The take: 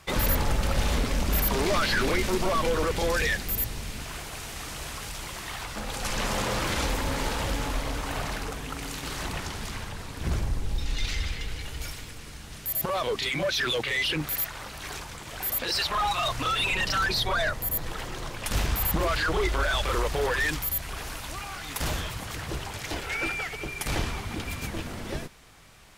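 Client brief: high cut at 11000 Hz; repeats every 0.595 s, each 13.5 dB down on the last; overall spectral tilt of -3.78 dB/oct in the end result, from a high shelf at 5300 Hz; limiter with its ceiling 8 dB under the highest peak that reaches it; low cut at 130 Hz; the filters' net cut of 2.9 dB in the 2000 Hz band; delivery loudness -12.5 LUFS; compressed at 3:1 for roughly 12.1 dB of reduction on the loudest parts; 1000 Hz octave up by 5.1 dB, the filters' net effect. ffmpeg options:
-af "highpass=130,lowpass=11k,equalizer=f=1k:t=o:g=8.5,equalizer=f=2k:t=o:g=-6.5,highshelf=f=5.3k:g=-3.5,acompressor=threshold=-36dB:ratio=3,alimiter=level_in=6.5dB:limit=-24dB:level=0:latency=1,volume=-6.5dB,aecho=1:1:595|1190:0.211|0.0444,volume=26.5dB"

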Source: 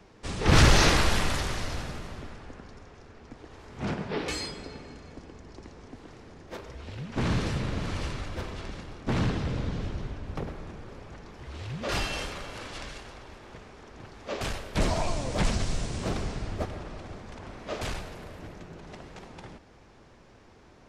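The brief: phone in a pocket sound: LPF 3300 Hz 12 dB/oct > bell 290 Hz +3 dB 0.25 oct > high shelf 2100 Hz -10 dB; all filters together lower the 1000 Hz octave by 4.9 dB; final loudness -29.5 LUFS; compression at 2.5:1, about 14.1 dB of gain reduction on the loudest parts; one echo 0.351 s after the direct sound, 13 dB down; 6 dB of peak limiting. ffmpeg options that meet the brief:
-af "equalizer=f=1k:t=o:g=-4,acompressor=threshold=-36dB:ratio=2.5,alimiter=level_in=4dB:limit=-24dB:level=0:latency=1,volume=-4dB,lowpass=3.3k,equalizer=f=290:t=o:w=0.25:g=3,highshelf=f=2.1k:g=-10,aecho=1:1:351:0.224,volume=12.5dB"

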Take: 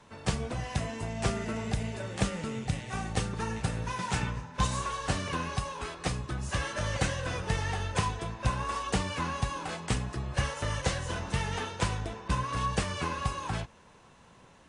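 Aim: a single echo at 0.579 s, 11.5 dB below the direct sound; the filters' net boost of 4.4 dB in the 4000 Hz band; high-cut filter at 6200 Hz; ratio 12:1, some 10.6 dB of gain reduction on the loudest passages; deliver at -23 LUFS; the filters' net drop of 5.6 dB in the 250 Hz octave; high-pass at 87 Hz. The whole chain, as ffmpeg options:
-af "highpass=87,lowpass=6.2k,equalizer=f=250:t=o:g=-8.5,equalizer=f=4k:t=o:g=6.5,acompressor=threshold=-36dB:ratio=12,aecho=1:1:579:0.266,volume=17dB"

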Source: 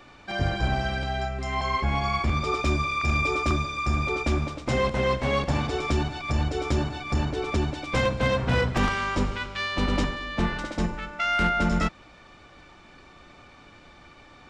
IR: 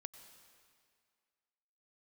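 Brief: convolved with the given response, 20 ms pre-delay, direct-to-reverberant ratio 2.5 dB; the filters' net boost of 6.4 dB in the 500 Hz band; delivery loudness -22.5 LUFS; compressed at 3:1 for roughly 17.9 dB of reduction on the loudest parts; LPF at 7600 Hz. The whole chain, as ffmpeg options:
-filter_complex "[0:a]lowpass=7.6k,equalizer=f=500:t=o:g=7.5,acompressor=threshold=-41dB:ratio=3,asplit=2[a][b];[1:a]atrim=start_sample=2205,adelay=20[c];[b][c]afir=irnorm=-1:irlink=0,volume=2.5dB[d];[a][d]amix=inputs=2:normalize=0,volume=16dB"

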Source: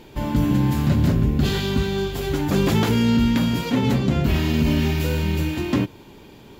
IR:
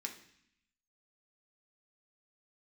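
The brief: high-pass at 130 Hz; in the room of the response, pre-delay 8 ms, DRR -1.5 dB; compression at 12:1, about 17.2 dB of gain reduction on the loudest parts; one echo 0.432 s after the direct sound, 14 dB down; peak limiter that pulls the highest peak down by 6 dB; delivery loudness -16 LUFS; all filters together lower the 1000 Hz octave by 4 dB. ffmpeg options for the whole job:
-filter_complex "[0:a]highpass=130,equalizer=f=1k:t=o:g=-5,acompressor=threshold=-34dB:ratio=12,alimiter=level_in=6dB:limit=-24dB:level=0:latency=1,volume=-6dB,aecho=1:1:432:0.2,asplit=2[a][b];[1:a]atrim=start_sample=2205,adelay=8[c];[b][c]afir=irnorm=-1:irlink=0,volume=3dB[d];[a][d]amix=inputs=2:normalize=0,volume=19dB"

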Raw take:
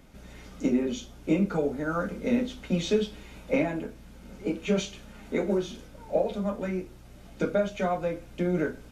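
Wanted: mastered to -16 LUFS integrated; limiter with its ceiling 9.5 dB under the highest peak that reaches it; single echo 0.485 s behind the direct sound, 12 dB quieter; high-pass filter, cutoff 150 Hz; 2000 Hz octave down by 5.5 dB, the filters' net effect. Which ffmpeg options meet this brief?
-af "highpass=150,equalizer=f=2k:t=o:g=-7.5,alimiter=limit=-23dB:level=0:latency=1,aecho=1:1:485:0.251,volume=18dB"

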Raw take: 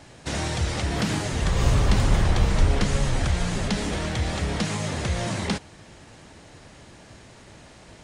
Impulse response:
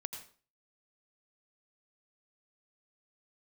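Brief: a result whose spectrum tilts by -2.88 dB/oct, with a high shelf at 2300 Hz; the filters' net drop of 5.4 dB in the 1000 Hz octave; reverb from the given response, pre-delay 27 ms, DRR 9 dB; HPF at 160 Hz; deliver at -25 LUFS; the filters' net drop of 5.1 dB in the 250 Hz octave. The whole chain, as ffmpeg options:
-filter_complex "[0:a]highpass=160,equalizer=f=250:t=o:g=-5,equalizer=f=1k:t=o:g=-8,highshelf=f=2.3k:g=5,asplit=2[a][b];[1:a]atrim=start_sample=2205,adelay=27[c];[b][c]afir=irnorm=-1:irlink=0,volume=-7.5dB[d];[a][d]amix=inputs=2:normalize=0,volume=2.5dB"

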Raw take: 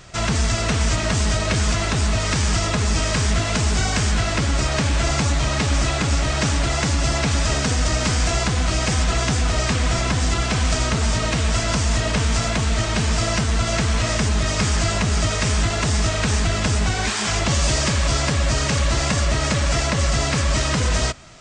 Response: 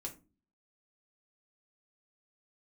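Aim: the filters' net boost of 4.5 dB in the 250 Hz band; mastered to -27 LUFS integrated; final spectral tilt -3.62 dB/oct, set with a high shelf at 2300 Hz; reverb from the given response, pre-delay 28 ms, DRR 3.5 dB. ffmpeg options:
-filter_complex "[0:a]equalizer=f=250:t=o:g=6,highshelf=f=2.3k:g=5.5,asplit=2[a][b];[1:a]atrim=start_sample=2205,adelay=28[c];[b][c]afir=irnorm=-1:irlink=0,volume=-1dB[d];[a][d]amix=inputs=2:normalize=0,volume=-11dB"

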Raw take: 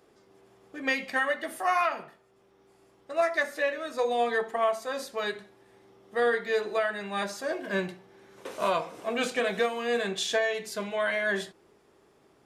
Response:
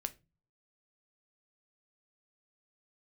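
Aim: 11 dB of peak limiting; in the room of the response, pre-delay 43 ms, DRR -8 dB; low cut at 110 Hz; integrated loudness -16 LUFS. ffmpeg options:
-filter_complex "[0:a]highpass=110,alimiter=level_in=1dB:limit=-24dB:level=0:latency=1,volume=-1dB,asplit=2[a][b];[1:a]atrim=start_sample=2205,adelay=43[c];[b][c]afir=irnorm=-1:irlink=0,volume=9dB[d];[a][d]amix=inputs=2:normalize=0,volume=10dB"

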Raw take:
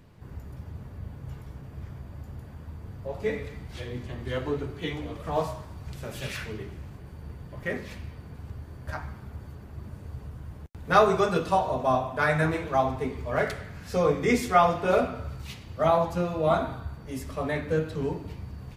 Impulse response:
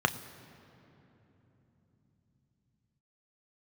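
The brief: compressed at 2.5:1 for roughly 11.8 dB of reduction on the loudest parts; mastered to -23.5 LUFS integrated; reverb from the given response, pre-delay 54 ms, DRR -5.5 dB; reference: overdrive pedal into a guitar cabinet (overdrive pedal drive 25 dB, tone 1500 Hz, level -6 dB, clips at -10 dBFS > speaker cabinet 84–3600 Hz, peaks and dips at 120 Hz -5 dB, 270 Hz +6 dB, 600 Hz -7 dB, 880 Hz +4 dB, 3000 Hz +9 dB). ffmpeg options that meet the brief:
-filter_complex "[0:a]acompressor=threshold=-32dB:ratio=2.5,asplit=2[a][b];[1:a]atrim=start_sample=2205,adelay=54[c];[b][c]afir=irnorm=-1:irlink=0,volume=-6dB[d];[a][d]amix=inputs=2:normalize=0,asplit=2[e][f];[f]highpass=f=720:p=1,volume=25dB,asoftclip=type=tanh:threshold=-10dB[g];[e][g]amix=inputs=2:normalize=0,lowpass=f=1.5k:p=1,volume=-6dB,highpass=84,equalizer=f=120:t=q:w=4:g=-5,equalizer=f=270:t=q:w=4:g=6,equalizer=f=600:t=q:w=4:g=-7,equalizer=f=880:t=q:w=4:g=4,equalizer=f=3k:t=q:w=4:g=9,lowpass=f=3.6k:w=0.5412,lowpass=f=3.6k:w=1.3066,volume=-1.5dB"

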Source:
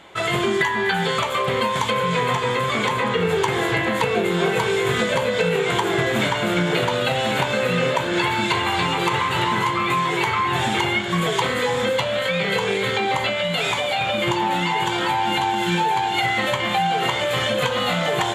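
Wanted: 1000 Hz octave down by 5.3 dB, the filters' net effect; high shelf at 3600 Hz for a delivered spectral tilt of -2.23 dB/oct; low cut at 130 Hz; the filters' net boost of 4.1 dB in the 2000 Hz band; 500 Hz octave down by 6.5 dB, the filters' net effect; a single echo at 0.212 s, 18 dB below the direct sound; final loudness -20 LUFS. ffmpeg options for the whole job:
-af "highpass=130,equalizer=f=500:t=o:g=-7,equalizer=f=1k:t=o:g=-6,equalizer=f=2k:t=o:g=4,highshelf=f=3.6k:g=9,aecho=1:1:212:0.126,volume=-1dB"

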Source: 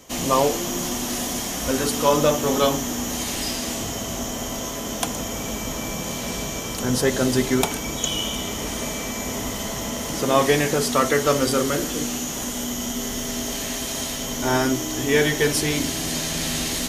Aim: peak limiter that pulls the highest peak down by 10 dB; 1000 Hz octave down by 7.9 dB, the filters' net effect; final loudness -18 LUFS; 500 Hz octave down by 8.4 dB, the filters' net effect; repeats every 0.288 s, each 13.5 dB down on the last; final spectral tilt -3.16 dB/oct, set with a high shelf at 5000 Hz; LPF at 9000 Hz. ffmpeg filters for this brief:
-af "lowpass=9k,equalizer=f=500:t=o:g=-8.5,equalizer=f=1k:t=o:g=-8,highshelf=f=5k:g=6.5,alimiter=limit=-14.5dB:level=0:latency=1,aecho=1:1:288|576:0.211|0.0444,volume=6.5dB"

